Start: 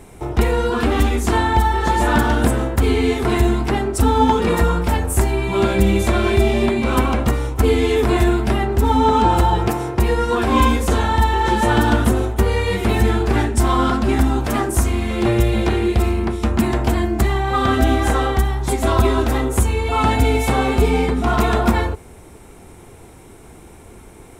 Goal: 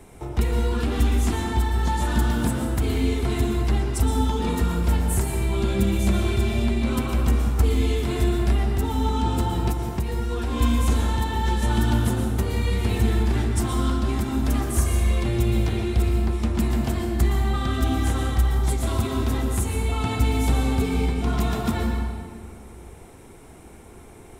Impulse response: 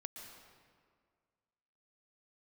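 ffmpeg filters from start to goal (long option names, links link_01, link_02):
-filter_complex "[0:a]acrossover=split=260|3000[link_01][link_02][link_03];[link_02]acompressor=threshold=-33dB:ratio=2[link_04];[link_01][link_04][link_03]amix=inputs=3:normalize=0[link_05];[1:a]atrim=start_sample=2205[link_06];[link_05][link_06]afir=irnorm=-1:irlink=0,asettb=1/sr,asplit=3[link_07][link_08][link_09];[link_07]atrim=end=9.714[link_10];[link_08]atrim=start=9.71:end=10.61,asetpts=PTS-STARTPTS,afade=type=in:duration=0.004:curve=qsin,afade=type=out:start_time=0.896:duration=0.004:curve=qsin,acompressor=threshold=-23dB:ratio=2.5[link_11];[link_09]atrim=start=10.606[link_12];[link_10][link_11]acrossfade=duration=0.004:curve1=hsin:curve2=qsin[link_13];[link_13][link_12]acrossfade=duration=0.004:curve1=qsin:curve2=hsin,asettb=1/sr,asplit=3[link_14][link_15][link_16];[link_14]atrim=end=13.754[link_17];[link_15]atrim=start=13.75:end=14.28,asetpts=PTS-STARTPTS,afade=type=in:duration=0.004:curve=qsin,afade=type=out:start_time=0.526:duration=0.004:curve=qsin,aeval=exprs='sgn(val(0))*max(abs(val(0))-0.00531,0)':channel_layout=same[link_18];[link_16]atrim=start=14.276[link_19];[link_17][link_18]acrossfade=duration=0.004:curve1=hsin:curve2=qsin[link_20];[link_20][link_19]acrossfade=duration=0.004:curve1=qsin:curve2=hsin,asettb=1/sr,asplit=3[link_21][link_22][link_23];[link_21]atrim=end=14.784[link_24];[link_22]atrim=start=14.78:end=15.24,asetpts=PTS-STARTPTS,afade=type=in:duration=0.004:curve=qsin,afade=type=out:start_time=0.456:duration=0.004:curve=qsin,aecho=1:1:1.8:0.54,atrim=end_sample=20286[link_25];[link_23]atrim=start=15.236[link_26];[link_24][link_25]acrossfade=duration=0.004:curve1=hsin:curve2=qsin[link_27];[link_27][link_26]acrossfade=duration=0.004:curve1=qsin:curve2=hsin"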